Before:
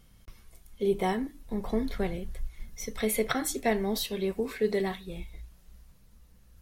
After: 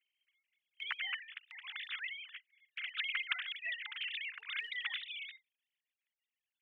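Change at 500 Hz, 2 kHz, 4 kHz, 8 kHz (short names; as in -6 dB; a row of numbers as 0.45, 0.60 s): under -40 dB, +1.5 dB, +0.5 dB, under -40 dB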